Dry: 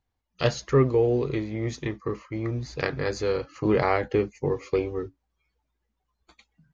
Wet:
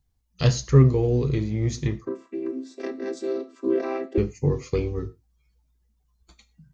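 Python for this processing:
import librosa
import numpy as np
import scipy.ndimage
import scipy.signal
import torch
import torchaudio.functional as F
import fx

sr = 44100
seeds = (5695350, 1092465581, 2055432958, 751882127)

y = fx.chord_vocoder(x, sr, chord='major triad', root=60, at=(2.05, 4.18))
y = fx.bass_treble(y, sr, bass_db=14, treble_db=12)
y = fx.rev_gated(y, sr, seeds[0], gate_ms=140, shape='falling', drr_db=10.0)
y = y * 10.0 ** (-4.0 / 20.0)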